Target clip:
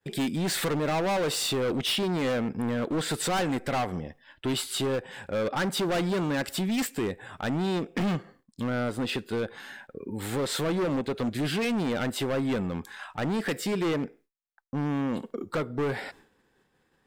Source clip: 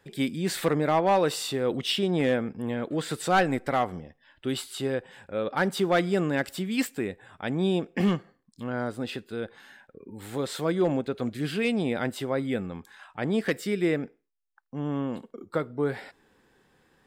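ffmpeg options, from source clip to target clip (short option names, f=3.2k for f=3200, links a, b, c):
-filter_complex "[0:a]agate=range=-33dB:threshold=-54dB:ratio=3:detection=peak,asplit=2[a][b];[b]acompressor=threshold=-33dB:ratio=6,volume=3dB[c];[a][c]amix=inputs=2:normalize=0,volume=24.5dB,asoftclip=hard,volume=-24.5dB"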